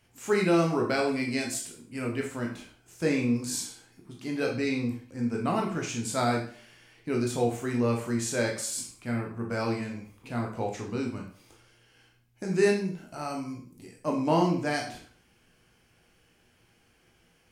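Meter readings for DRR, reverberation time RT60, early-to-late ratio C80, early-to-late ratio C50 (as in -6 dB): -0.5 dB, 0.50 s, 11.5 dB, 7.0 dB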